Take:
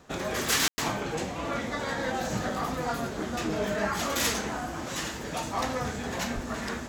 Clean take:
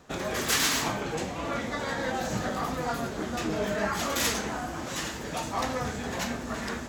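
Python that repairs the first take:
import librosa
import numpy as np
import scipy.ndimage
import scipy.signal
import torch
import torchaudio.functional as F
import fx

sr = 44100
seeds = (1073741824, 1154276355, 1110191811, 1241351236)

y = fx.highpass(x, sr, hz=140.0, slope=24, at=(6.34, 6.46), fade=0.02)
y = fx.fix_ambience(y, sr, seeds[0], print_start_s=4.82, print_end_s=5.32, start_s=0.68, end_s=0.78)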